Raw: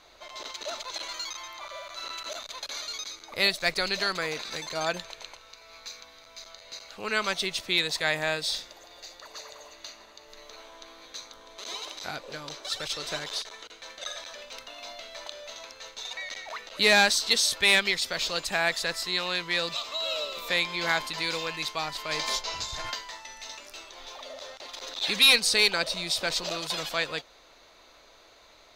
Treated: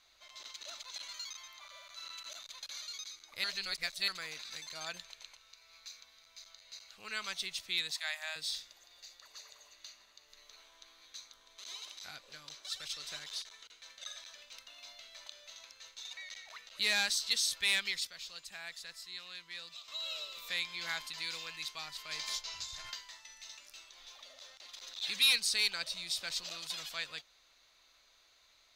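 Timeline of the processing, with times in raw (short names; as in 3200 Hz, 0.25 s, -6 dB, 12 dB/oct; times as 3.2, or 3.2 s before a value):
3.44–4.08 reverse
7.91–8.36 steep high-pass 600 Hz 72 dB/oct
18.07–19.88 gain -8 dB
whole clip: passive tone stack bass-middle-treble 5-5-5; notch 900 Hz, Q 26; gain -1 dB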